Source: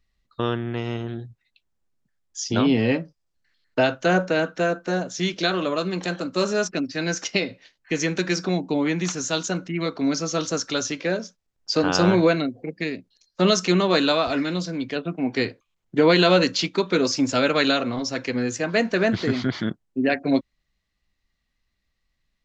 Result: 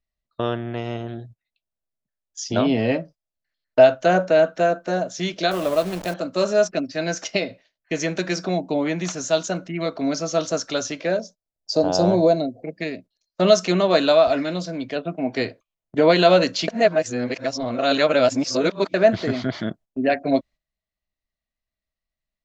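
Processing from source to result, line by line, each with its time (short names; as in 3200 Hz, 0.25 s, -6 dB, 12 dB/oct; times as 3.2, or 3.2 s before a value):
5.51–6.14 level-crossing sampler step -30 dBFS
11.2–12.63 band shelf 1900 Hz -13.5 dB
16.68–18.94 reverse
whole clip: gate -42 dBFS, range -12 dB; bell 640 Hz +12.5 dB 0.34 oct; gain -1.5 dB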